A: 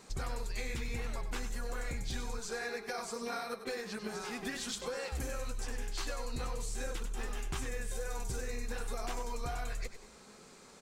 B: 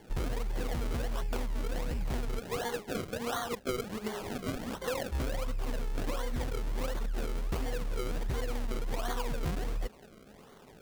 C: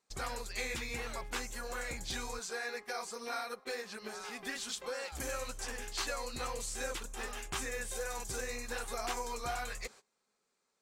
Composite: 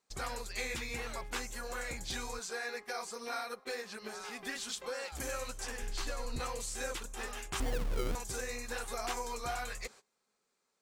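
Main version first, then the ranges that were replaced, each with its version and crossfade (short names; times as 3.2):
C
5.82–6.4 from A
7.6–8.15 from B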